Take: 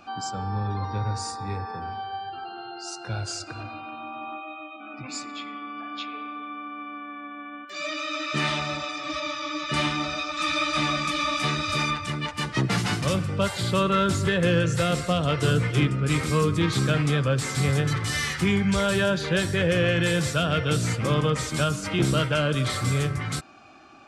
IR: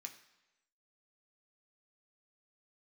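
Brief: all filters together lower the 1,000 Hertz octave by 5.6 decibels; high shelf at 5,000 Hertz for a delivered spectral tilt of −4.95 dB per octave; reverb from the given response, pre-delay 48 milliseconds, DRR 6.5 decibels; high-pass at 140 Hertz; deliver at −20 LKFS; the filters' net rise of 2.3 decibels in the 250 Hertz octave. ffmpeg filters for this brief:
-filter_complex "[0:a]highpass=140,equalizer=frequency=250:width_type=o:gain=5.5,equalizer=frequency=1000:width_type=o:gain=-8,highshelf=frequency=5000:gain=-4.5,asplit=2[link_01][link_02];[1:a]atrim=start_sample=2205,adelay=48[link_03];[link_02][link_03]afir=irnorm=-1:irlink=0,volume=-1.5dB[link_04];[link_01][link_04]amix=inputs=2:normalize=0,volume=5.5dB"

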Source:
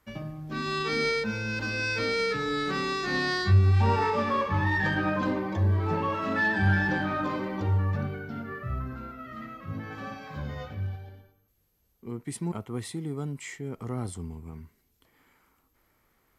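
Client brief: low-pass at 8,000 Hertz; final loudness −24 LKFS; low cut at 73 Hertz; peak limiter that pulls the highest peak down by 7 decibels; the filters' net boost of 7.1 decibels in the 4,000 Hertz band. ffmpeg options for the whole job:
ffmpeg -i in.wav -af "highpass=73,lowpass=8000,equalizer=frequency=4000:width_type=o:gain=8.5,volume=5dB,alimiter=limit=-14dB:level=0:latency=1" out.wav

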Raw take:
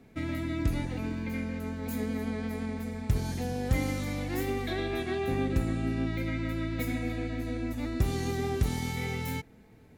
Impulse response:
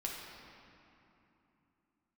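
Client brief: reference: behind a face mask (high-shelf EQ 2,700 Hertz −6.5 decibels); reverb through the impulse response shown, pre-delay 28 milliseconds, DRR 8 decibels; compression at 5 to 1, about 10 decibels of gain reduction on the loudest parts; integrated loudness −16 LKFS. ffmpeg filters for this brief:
-filter_complex "[0:a]acompressor=threshold=-32dB:ratio=5,asplit=2[link_01][link_02];[1:a]atrim=start_sample=2205,adelay=28[link_03];[link_02][link_03]afir=irnorm=-1:irlink=0,volume=-9.5dB[link_04];[link_01][link_04]amix=inputs=2:normalize=0,highshelf=frequency=2700:gain=-6.5,volume=20dB"

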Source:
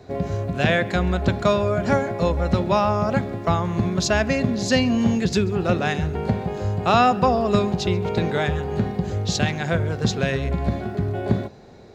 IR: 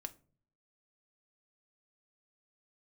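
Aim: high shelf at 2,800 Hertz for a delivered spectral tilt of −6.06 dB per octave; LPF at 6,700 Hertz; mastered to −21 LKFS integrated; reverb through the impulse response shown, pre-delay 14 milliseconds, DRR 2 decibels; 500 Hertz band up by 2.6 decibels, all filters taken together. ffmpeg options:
-filter_complex "[0:a]lowpass=6700,equalizer=frequency=500:width_type=o:gain=3.5,highshelf=frequency=2800:gain=-5.5,asplit=2[link_01][link_02];[1:a]atrim=start_sample=2205,adelay=14[link_03];[link_02][link_03]afir=irnorm=-1:irlink=0,volume=1.5dB[link_04];[link_01][link_04]amix=inputs=2:normalize=0,volume=-1.5dB"

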